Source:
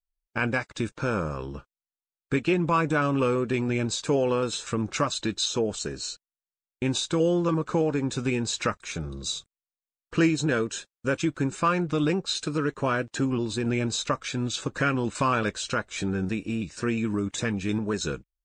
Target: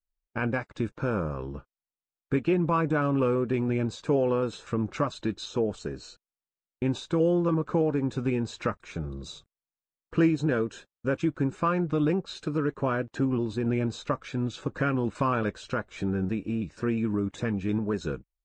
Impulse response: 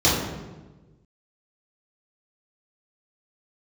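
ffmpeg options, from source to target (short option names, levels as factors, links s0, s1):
-af "lowpass=f=1100:p=1"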